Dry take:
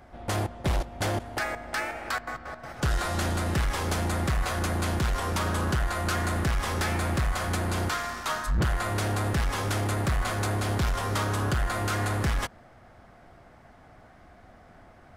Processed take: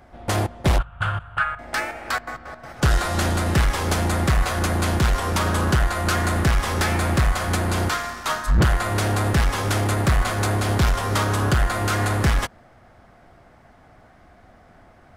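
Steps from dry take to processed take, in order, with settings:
0:00.78–0:01.59: drawn EQ curve 160 Hz 0 dB, 250 Hz −24 dB, 810 Hz −9 dB, 1,400 Hz +10 dB, 2,000 Hz −10 dB, 2,900 Hz 0 dB, 5,700 Hz −26 dB, 8,500 Hz −15 dB, 14,000 Hz −29 dB
expander for the loud parts 1.5 to 1, over −36 dBFS
level +8.5 dB

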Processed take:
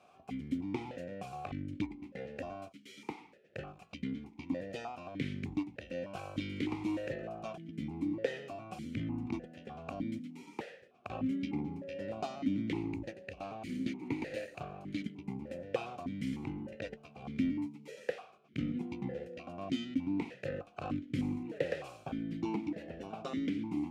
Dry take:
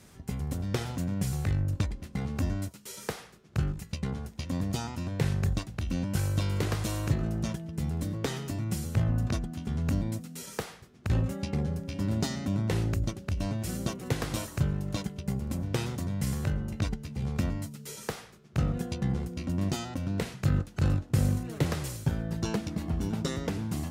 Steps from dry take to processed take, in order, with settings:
0:12.80–0:15.02: lower of the sound and its delayed copy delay 0.46 ms
formant filter that steps through the vowels 3.3 Hz
level +8 dB

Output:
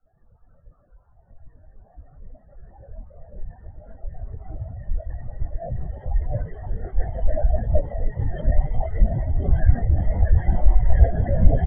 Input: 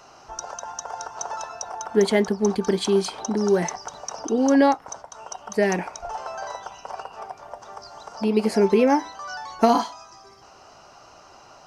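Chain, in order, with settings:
ceiling on every frequency bin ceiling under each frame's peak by 22 dB
low shelf with overshoot 120 Hz +6.5 dB, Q 1.5
hum removal 76.23 Hz, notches 15
in parallel at −2 dB: brickwall limiter −13.5 dBFS, peak gain reduction 9.5 dB
on the sum: transient designer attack −6 dB, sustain +9 dB
extreme stretch with random phases 30×, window 1.00 s, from 0:01.71
single-tap delay 993 ms −11 dB
convolution reverb RT60 1.1 s, pre-delay 76 ms, DRR 2 dB
linear-prediction vocoder at 8 kHz whisper
every bin expanded away from the loudest bin 4 to 1
level +2.5 dB

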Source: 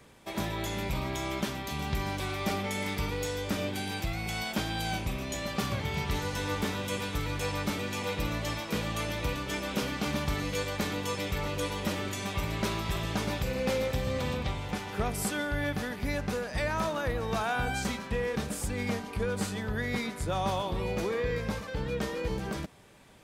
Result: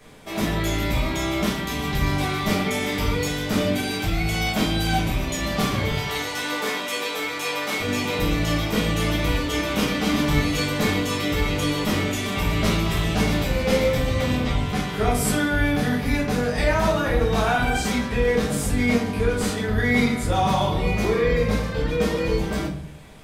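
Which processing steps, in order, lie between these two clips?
0:05.90–0:07.80: high-pass filter 470 Hz 12 dB per octave
convolution reverb RT60 0.55 s, pre-delay 5 ms, DRR −5.5 dB
level +2.5 dB

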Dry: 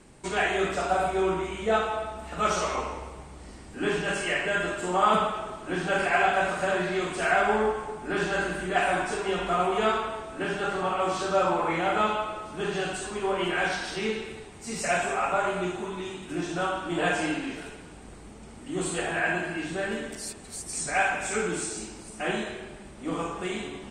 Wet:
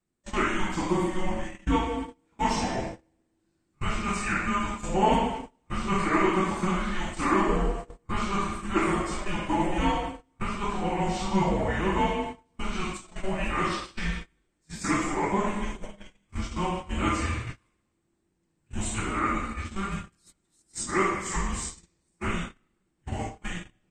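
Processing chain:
frequency shifter −390 Hz
noise gate −32 dBFS, range −29 dB

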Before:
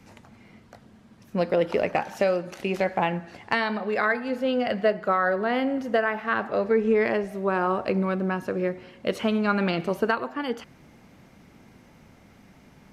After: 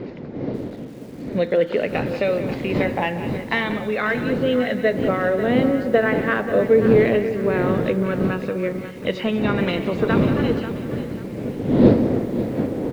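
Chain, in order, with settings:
hearing-aid frequency compression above 3,000 Hz 1.5 to 1
wind on the microphone 310 Hz −27 dBFS
low-shelf EQ 120 Hz −8.5 dB
on a send: repeating echo 187 ms, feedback 30%, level −13 dB
on the sum: downsampling to 16,000 Hz
graphic EQ with 10 bands 125 Hz +10 dB, 250 Hz +9 dB, 500 Hz +12 dB, 2,000 Hz +10 dB, 4,000 Hz +11 dB
in parallel at −9 dB: soft clipping −5.5 dBFS, distortion −14 dB
on the sum: phase shifter 0.16 Hz, delay 1.1 ms, feedback 30%
feedback echo at a low word length 540 ms, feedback 35%, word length 5 bits, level −11.5 dB
level −10.5 dB

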